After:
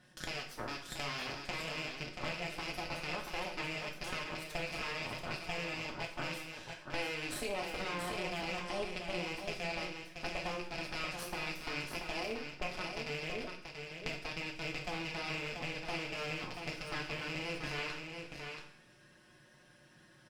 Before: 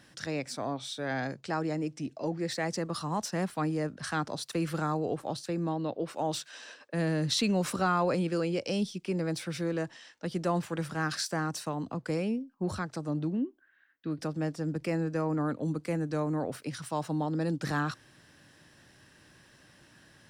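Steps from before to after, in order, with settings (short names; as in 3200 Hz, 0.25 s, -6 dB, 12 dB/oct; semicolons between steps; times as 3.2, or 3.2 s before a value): rattling part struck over -39 dBFS, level -21 dBFS; high shelf 3300 Hz -5 dB; comb 5.5 ms, depth 76%; added harmonics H 3 -14 dB, 4 -6 dB, 8 -20 dB, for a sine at -11.5 dBFS; compressor 5:1, threshold -40 dBFS, peak gain reduction 22 dB; echo 0.683 s -6 dB; two-slope reverb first 0.49 s, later 1.8 s, from -18 dB, DRR 1 dB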